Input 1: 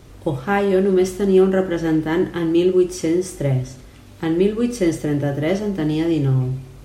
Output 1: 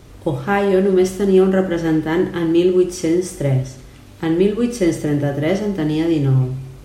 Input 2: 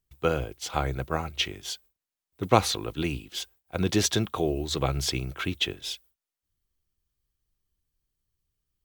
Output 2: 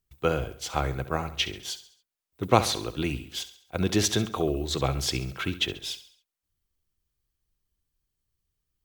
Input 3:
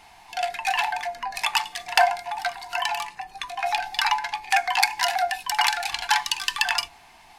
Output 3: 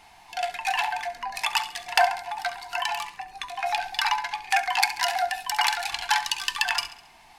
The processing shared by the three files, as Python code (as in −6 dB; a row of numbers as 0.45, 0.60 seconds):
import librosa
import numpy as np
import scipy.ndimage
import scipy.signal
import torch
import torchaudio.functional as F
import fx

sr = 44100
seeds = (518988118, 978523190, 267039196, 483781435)

y = fx.echo_feedback(x, sr, ms=68, feedback_pct=46, wet_db=-14)
y = librosa.util.normalize(y) * 10.0 ** (-3 / 20.0)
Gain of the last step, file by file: +1.5, 0.0, −2.0 decibels